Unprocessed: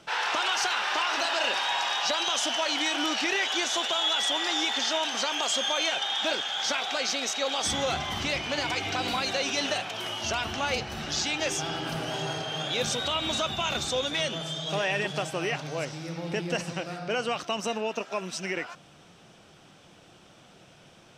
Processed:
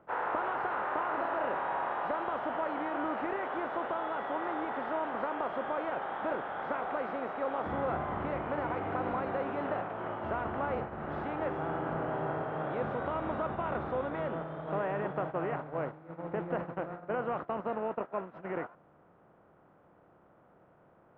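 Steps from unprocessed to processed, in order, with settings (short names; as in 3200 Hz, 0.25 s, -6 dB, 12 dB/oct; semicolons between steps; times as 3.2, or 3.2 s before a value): per-bin compression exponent 0.6; gate -27 dBFS, range -15 dB; LPF 1400 Hz 24 dB/oct; gain -6 dB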